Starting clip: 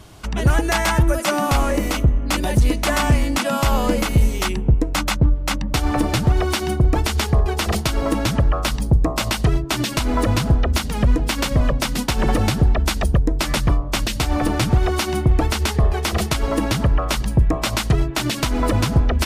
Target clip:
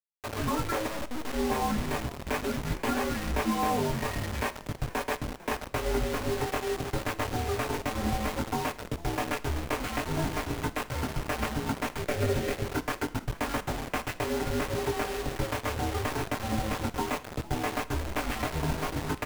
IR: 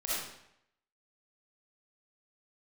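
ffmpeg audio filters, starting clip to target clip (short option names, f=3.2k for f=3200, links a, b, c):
-filter_complex "[0:a]highpass=f=370:t=q:w=0.5412,highpass=f=370:t=q:w=1.307,lowpass=f=3.4k:t=q:w=0.5176,lowpass=f=3.4k:t=q:w=0.7071,lowpass=f=3.4k:t=q:w=1.932,afreqshift=-130,aecho=1:1:6.3:0.99,acompressor=threshold=-25dB:ratio=2.5,flanger=delay=18:depth=3.6:speed=0.67,afreqshift=-210,asplit=3[a][b][c];[a]afade=t=out:st=0.86:d=0.02[d];[b]aeval=exprs='(tanh(44.7*val(0)+0.55)-tanh(0.55))/44.7':c=same,afade=t=in:st=0.86:d=0.02,afade=t=out:st=1.32:d=0.02[e];[c]afade=t=in:st=1.32:d=0.02[f];[d][e][f]amix=inputs=3:normalize=0,adynamicsmooth=sensitivity=1.5:basefreq=1k,acrusher=bits=5:mix=0:aa=0.000001,asettb=1/sr,asplit=3[g][h][i];[g]atrim=end=12.024[j];[h]atrim=start=12.02:end=12.64,asetpts=PTS-STARTPTS,afade=t=in:d=0.004:c=qsin,afade=t=out:st=0.616:d=0.004:c=qsin,equalizer=f=500:t=o:w=1:g=5,equalizer=f=1k:t=o:w=1:g=-8,equalizer=f=2k:t=o:w=1:g=3[k];[i]atrim=start=12.636[l];[j][k]acrossfade=d=0.004:c1=hsin:c2=qsin[m];[m][l]acrossfade=d=0.004:c1=qsin:c2=hsin,asplit=4[n][o][p][q];[o]adelay=450,afreqshift=-69,volume=-19dB[r];[p]adelay=900,afreqshift=-138,volume=-28.1dB[s];[q]adelay=1350,afreqshift=-207,volume=-37.2dB[t];[n][r][s][t]amix=inputs=4:normalize=0,asplit=2[u][v];[1:a]atrim=start_sample=2205,asetrate=70560,aresample=44100[w];[v][w]afir=irnorm=-1:irlink=0,volume=-16.5dB[x];[u][x]amix=inputs=2:normalize=0"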